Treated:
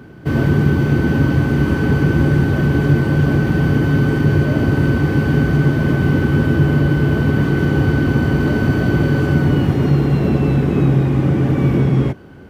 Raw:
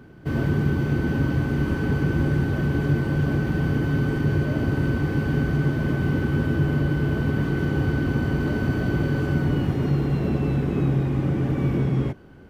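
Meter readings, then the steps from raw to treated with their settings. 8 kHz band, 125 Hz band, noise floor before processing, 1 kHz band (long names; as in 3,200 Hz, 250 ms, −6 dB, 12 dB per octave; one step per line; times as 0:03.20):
can't be measured, +8.0 dB, −33 dBFS, +8.0 dB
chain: high-pass filter 57 Hz
level +8 dB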